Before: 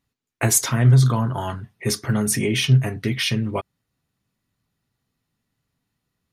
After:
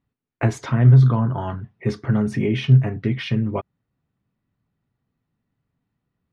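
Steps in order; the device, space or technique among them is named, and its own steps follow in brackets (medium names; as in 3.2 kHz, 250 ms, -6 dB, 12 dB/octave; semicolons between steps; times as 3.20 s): phone in a pocket (low-pass 3.7 kHz 12 dB/octave; peaking EQ 160 Hz +2.5 dB 1.9 oct; treble shelf 2.4 kHz -11 dB)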